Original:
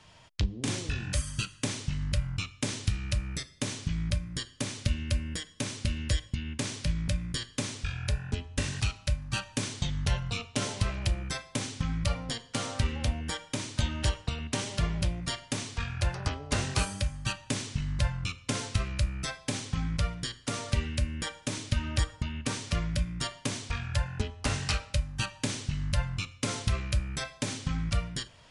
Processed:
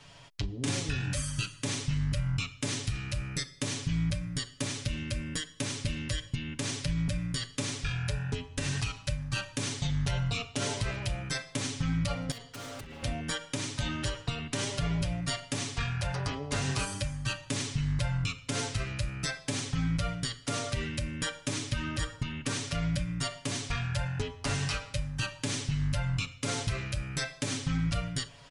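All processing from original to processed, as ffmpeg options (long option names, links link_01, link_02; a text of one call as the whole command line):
ffmpeg -i in.wav -filter_complex "[0:a]asettb=1/sr,asplit=3[link_01][link_02][link_03];[link_01]atrim=end=12.314[link_04];[link_02]atrim=start=12.31:end=13.03,asetpts=PTS-STARTPTS,afade=type=in:duration=0.004:curve=qsin,afade=type=out:start_time=0.716:duration=0.004:curve=qsin,highshelf=frequency=5300:gain=-4.5,acompressor=threshold=-38dB:ratio=12:attack=3.2:release=140:knee=1:detection=peak,aeval=exprs='0.0106*(abs(mod(val(0)/0.0106+3,4)-2)-1)':channel_layout=same[link_05];[link_03]atrim=start=13.026[link_06];[link_04][link_05]acrossfade=duration=0.004:curve1=hsin:curve2=qsin[link_07];[link_07][link_06]acrossfade=duration=0.004:curve1=qsin:curve2=hsin,aecho=1:1:7.1:0.84,alimiter=limit=-22dB:level=0:latency=1:release=91,volume=1dB" out.wav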